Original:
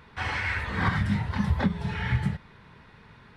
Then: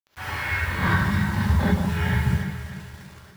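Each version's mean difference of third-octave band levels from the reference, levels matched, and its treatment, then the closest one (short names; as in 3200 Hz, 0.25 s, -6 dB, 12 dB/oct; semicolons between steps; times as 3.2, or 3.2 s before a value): 7.5 dB: AGC gain up to 4 dB; bit-crush 7-bit; on a send: echo with dull and thin repeats by turns 0.146 s, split 1200 Hz, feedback 65%, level -5 dB; on the sum: non-linear reverb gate 90 ms rising, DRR -4 dB; gain -6 dB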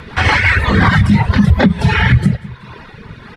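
2.5 dB: reverb removal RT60 1.1 s; rotary speaker horn 5.5 Hz, later 1.2 Hz, at 0.56; on a send: feedback echo 0.186 s, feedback 42%, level -22 dB; on the sum: maximiser +24.5 dB; gain -1 dB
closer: second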